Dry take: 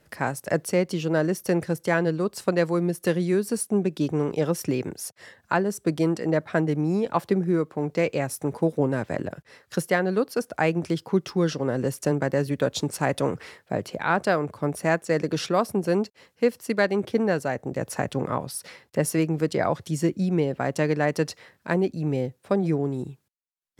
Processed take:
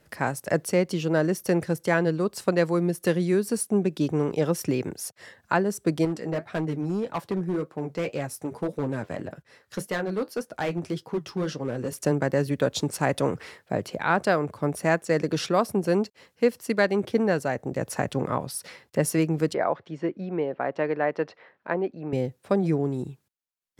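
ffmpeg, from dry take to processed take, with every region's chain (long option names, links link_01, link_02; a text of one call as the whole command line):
ffmpeg -i in.wav -filter_complex "[0:a]asettb=1/sr,asplit=3[link_01][link_02][link_03];[link_01]atrim=end=6.054[link_04];[link_02]atrim=start=6.05:end=11.93,asetpts=PTS-STARTPTS,afade=type=in:duration=0.004:curve=qsin,afade=type=out:start_time=5.876:duration=0.004:curve=qsin,flanger=delay=6.2:depth=5:regen=-57:speed=1.8:shape=sinusoidal,asoftclip=type=hard:threshold=-22dB[link_05];[link_03]atrim=start=11.926[link_06];[link_04][link_05]acrossfade=duration=0.004:curve1=hsin:curve2=qsin[link_07];[link_07][link_06]acrossfade=duration=0.004:curve1=qsin:curve2=hsin,asettb=1/sr,asplit=3[link_08][link_09][link_10];[link_08]atrim=end=19.544[link_11];[link_09]atrim=start=19.54:end=22.13,asetpts=PTS-STARTPTS,afade=type=in:duration=0.004:curve=qsin,afade=type=out:start_time=2.586:duration=0.004:curve=qsin,highpass=540,lowpass=3100,aemphasis=mode=reproduction:type=riaa[link_12];[link_10]atrim=start=22.126[link_13];[link_11][link_12]acrossfade=duration=0.004:curve1=hsin:curve2=qsin[link_14];[link_14][link_13]acrossfade=duration=0.004:curve1=qsin:curve2=hsin" out.wav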